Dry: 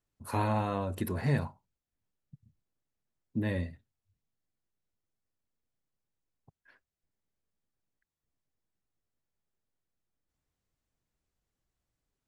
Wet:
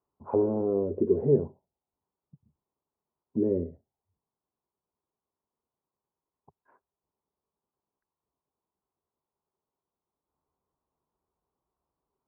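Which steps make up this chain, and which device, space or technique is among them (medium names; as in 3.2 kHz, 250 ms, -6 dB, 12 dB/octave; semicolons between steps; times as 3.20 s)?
envelope filter bass rig (touch-sensitive low-pass 410–1000 Hz down, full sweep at -29.5 dBFS; cabinet simulation 67–2400 Hz, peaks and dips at 110 Hz -9 dB, 400 Hz +8 dB, 1.8 kHz -8 dB)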